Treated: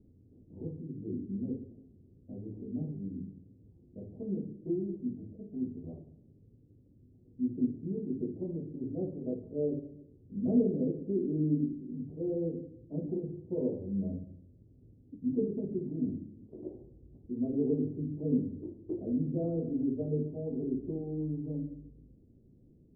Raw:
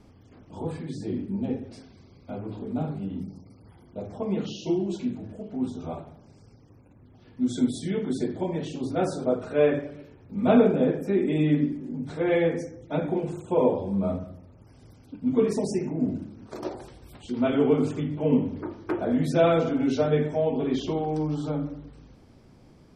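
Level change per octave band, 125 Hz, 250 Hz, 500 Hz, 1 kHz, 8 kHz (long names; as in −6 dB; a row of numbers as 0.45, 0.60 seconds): −6.5 dB, −6.5 dB, −11.5 dB, below −25 dB, below −30 dB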